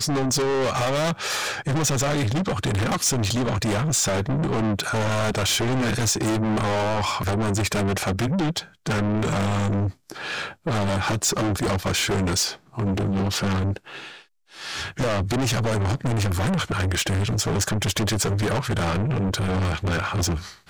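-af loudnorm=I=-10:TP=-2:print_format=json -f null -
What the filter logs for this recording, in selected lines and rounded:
"input_i" : "-23.7",
"input_tp" : "-14.6",
"input_lra" : "2.4",
"input_thresh" : "-33.8",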